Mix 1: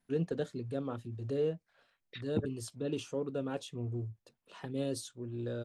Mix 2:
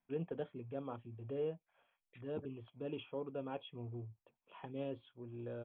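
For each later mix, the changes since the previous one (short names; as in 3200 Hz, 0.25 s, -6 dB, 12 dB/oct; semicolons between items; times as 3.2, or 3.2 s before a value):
second voice -8.0 dB; master: add rippled Chebyshev low-pass 3400 Hz, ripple 9 dB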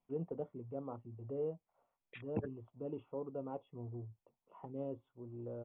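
first voice: add polynomial smoothing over 65 samples; second voice +11.0 dB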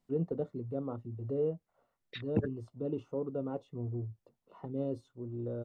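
master: remove rippled Chebyshev low-pass 3400 Hz, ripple 9 dB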